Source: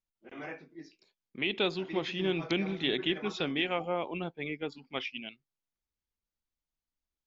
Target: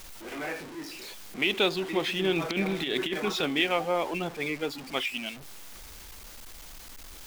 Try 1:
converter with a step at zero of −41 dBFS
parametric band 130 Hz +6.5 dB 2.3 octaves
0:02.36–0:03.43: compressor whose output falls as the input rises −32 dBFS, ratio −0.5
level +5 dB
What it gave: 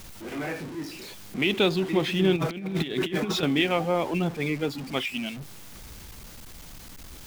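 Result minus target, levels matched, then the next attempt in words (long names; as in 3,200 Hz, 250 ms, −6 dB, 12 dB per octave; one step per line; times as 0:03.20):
125 Hz band +7.0 dB
converter with a step at zero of −41 dBFS
parametric band 130 Hz −5.5 dB 2.3 octaves
0:02.36–0:03.43: compressor whose output falls as the input rises −32 dBFS, ratio −0.5
level +5 dB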